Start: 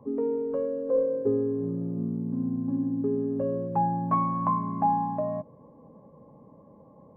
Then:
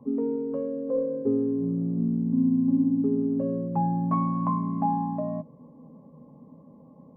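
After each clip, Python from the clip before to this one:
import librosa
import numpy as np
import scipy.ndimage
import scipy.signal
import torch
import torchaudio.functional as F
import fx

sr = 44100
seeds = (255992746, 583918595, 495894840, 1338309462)

y = fx.graphic_eq_31(x, sr, hz=(100, 160, 250, 1600), db=(-3, 9, 12, -5))
y = y * librosa.db_to_amplitude(-3.0)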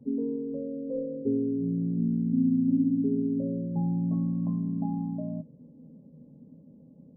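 y = scipy.ndimage.gaussian_filter1d(x, 17.0, mode='constant')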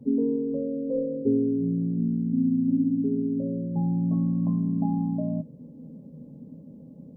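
y = fx.rider(x, sr, range_db=10, speed_s=2.0)
y = y * librosa.db_to_amplitude(2.5)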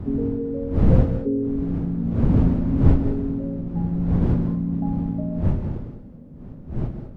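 y = fx.dmg_wind(x, sr, seeds[0], corner_hz=150.0, level_db=-22.0)
y = fx.rev_gated(y, sr, seeds[1], gate_ms=230, shape='rising', drr_db=7.5)
y = y * librosa.db_to_amplitude(-1.0)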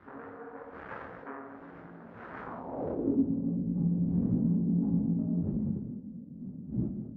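y = fx.tube_stage(x, sr, drive_db=24.0, bias=0.6)
y = fx.filter_sweep_bandpass(y, sr, from_hz=1600.0, to_hz=210.0, start_s=2.39, end_s=3.29, q=2.7)
y = fx.detune_double(y, sr, cents=56)
y = y * librosa.db_to_amplitude(9.0)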